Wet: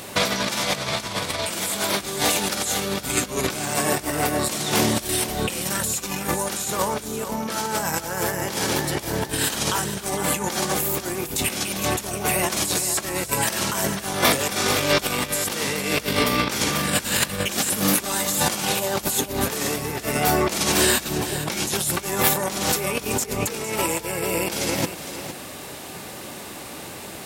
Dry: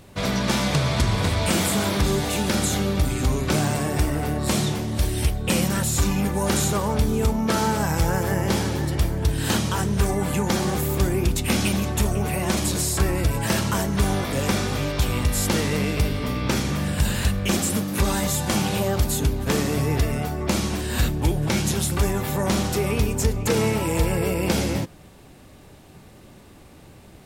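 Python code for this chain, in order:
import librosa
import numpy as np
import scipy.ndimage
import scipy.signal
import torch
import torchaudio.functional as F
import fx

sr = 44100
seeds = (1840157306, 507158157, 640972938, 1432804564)

p1 = fx.high_shelf(x, sr, hz=5500.0, db=5.5)
p2 = fx.over_compress(p1, sr, threshold_db=-27.0, ratio=-0.5)
p3 = fx.highpass(p2, sr, hz=510.0, slope=6)
p4 = p3 + fx.echo_single(p3, sr, ms=458, db=-11.0, dry=0)
y = F.gain(torch.from_numpy(p4), 9.0).numpy()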